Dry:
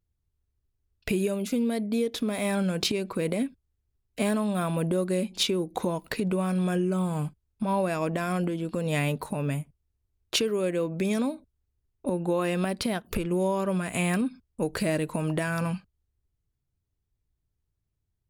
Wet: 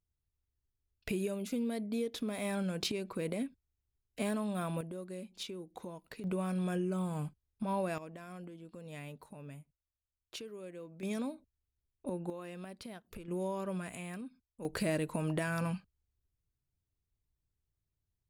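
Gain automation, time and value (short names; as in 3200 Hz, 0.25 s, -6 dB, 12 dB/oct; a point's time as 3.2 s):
-8.5 dB
from 4.81 s -17 dB
from 6.24 s -8 dB
from 7.98 s -19.5 dB
from 11.03 s -10 dB
from 12.3 s -18.5 dB
from 13.28 s -10.5 dB
from 13.95 s -17.5 dB
from 14.65 s -6 dB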